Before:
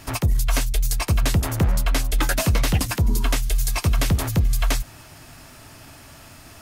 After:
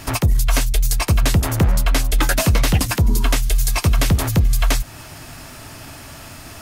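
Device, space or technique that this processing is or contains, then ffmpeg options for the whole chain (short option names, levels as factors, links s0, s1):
parallel compression: -filter_complex "[0:a]asplit=2[s0][s1];[s1]acompressor=threshold=0.0316:ratio=6,volume=0.75[s2];[s0][s2]amix=inputs=2:normalize=0,volume=1.33"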